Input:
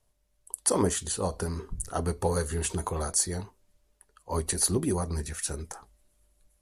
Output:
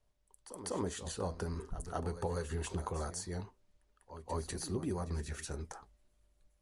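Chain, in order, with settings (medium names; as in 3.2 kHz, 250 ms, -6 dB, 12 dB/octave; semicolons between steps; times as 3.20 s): compression 3:1, threshold -30 dBFS, peak gain reduction 8 dB; distance through air 67 m; pre-echo 197 ms -12 dB; trim -4 dB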